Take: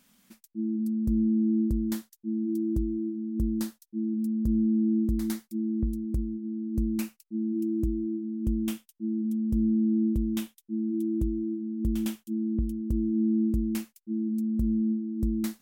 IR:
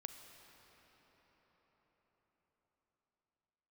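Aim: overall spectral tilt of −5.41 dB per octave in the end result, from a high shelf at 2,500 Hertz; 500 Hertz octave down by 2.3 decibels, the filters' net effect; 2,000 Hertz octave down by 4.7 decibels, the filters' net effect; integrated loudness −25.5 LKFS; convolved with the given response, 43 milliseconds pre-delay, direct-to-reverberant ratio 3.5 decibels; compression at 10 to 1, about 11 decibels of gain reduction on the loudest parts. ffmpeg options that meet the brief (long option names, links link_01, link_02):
-filter_complex "[0:a]equalizer=frequency=500:width_type=o:gain=-5.5,equalizer=frequency=2000:width_type=o:gain=-8,highshelf=frequency=2500:gain=4,acompressor=threshold=-34dB:ratio=10,asplit=2[link_01][link_02];[1:a]atrim=start_sample=2205,adelay=43[link_03];[link_02][link_03]afir=irnorm=-1:irlink=0,volume=0.5dB[link_04];[link_01][link_04]amix=inputs=2:normalize=0,volume=15.5dB"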